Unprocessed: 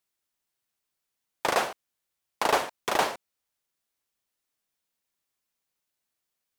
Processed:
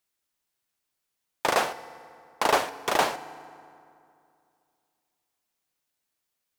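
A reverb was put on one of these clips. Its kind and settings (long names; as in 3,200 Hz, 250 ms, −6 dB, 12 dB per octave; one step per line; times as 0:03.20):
feedback delay network reverb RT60 2.5 s, low-frequency decay 1.1×, high-frequency decay 0.6×, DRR 14.5 dB
level +1.5 dB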